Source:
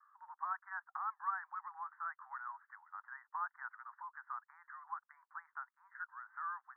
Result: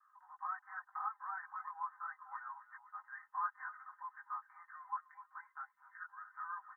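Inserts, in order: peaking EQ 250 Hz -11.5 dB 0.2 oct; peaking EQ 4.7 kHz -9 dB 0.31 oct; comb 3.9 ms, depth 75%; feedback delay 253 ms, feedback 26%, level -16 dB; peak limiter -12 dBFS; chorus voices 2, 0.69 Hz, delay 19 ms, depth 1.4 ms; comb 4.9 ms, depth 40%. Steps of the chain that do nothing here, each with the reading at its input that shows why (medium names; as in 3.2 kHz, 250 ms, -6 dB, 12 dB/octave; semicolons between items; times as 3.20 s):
peaking EQ 250 Hz: input has nothing below 640 Hz; peaking EQ 4.7 kHz: input has nothing above 2 kHz; peak limiter -12 dBFS: peak at its input -26.0 dBFS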